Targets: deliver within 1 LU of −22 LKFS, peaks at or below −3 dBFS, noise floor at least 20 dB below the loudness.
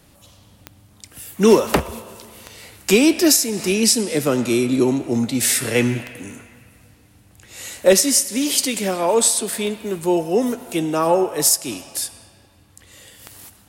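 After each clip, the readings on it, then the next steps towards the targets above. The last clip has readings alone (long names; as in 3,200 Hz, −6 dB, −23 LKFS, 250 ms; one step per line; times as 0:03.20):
number of clicks 8; integrated loudness −18.0 LKFS; sample peak −2.0 dBFS; target loudness −22.0 LKFS
→ click removal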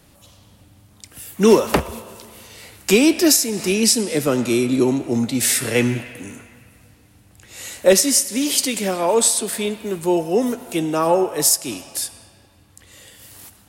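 number of clicks 0; integrated loudness −18.0 LKFS; sample peak −2.0 dBFS; target loudness −22.0 LKFS
→ level −4 dB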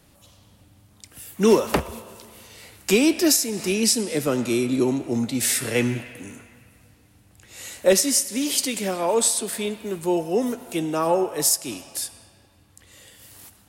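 integrated loudness −22.0 LKFS; sample peak −6.0 dBFS; background noise floor −56 dBFS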